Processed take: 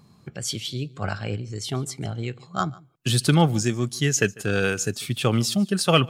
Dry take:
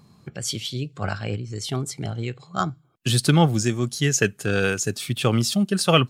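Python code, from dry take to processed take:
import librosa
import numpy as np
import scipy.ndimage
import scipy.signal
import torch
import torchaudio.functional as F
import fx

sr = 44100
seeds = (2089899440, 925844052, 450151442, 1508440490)

y = x + 10.0 ** (-23.5 / 20.0) * np.pad(x, (int(147 * sr / 1000.0), 0))[:len(x)]
y = y * 10.0 ** (-1.0 / 20.0)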